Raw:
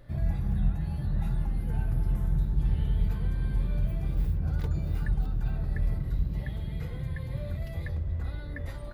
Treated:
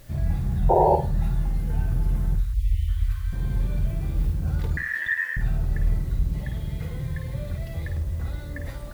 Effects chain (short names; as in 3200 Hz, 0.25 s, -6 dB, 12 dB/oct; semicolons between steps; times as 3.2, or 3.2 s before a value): 0.69–0.96 painted sound noise 330–980 Hz -21 dBFS; 2.35–3.33 Chebyshev band-stop 110–1100 Hz, order 5; 4.77–5.37 ring modulator 1800 Hz; requantised 10-bit, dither triangular; flutter echo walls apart 8.9 m, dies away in 0.35 s; 2.54–2.88 spectral delete 510–1800 Hz; gain +3 dB